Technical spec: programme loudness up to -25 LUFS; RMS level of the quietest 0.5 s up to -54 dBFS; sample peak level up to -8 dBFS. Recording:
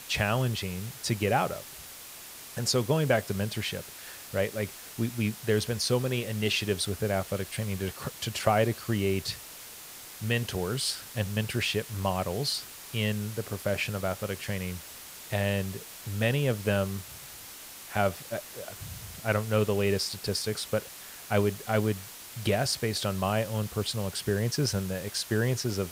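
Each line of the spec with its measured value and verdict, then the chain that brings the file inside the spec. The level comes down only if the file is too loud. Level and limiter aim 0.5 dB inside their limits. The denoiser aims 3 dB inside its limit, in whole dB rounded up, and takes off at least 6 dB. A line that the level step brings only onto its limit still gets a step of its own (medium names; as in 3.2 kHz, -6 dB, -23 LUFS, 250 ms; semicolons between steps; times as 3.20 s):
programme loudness -30.0 LUFS: pass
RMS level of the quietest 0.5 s -45 dBFS: fail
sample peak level -8.5 dBFS: pass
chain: noise reduction 12 dB, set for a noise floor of -45 dBFS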